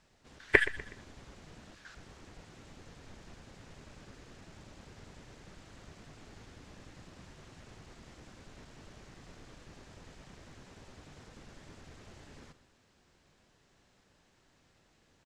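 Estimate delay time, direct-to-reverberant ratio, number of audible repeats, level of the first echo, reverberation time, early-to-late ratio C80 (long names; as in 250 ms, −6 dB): 123 ms, no reverb audible, 3, −16.0 dB, no reverb audible, no reverb audible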